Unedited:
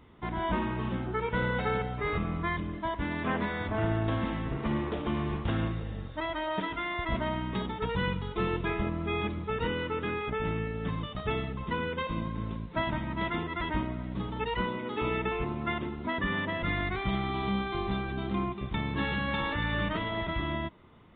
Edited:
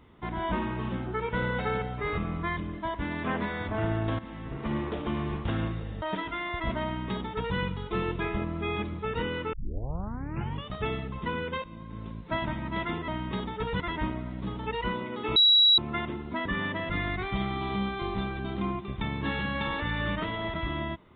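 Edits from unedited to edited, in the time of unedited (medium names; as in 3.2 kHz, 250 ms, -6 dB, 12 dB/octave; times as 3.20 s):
4.19–4.77 s: fade in, from -14.5 dB
6.02–6.47 s: delete
7.30–8.02 s: copy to 13.53 s
9.98 s: tape start 1.12 s
12.09–12.80 s: fade in, from -16 dB
15.09–15.51 s: bleep 3.89 kHz -16 dBFS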